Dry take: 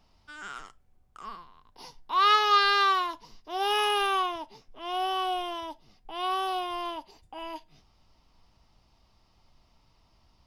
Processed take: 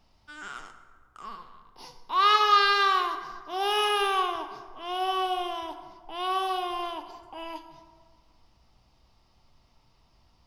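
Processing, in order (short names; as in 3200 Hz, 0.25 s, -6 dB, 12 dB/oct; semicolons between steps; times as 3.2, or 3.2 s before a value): plate-style reverb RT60 1.6 s, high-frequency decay 0.55×, DRR 7 dB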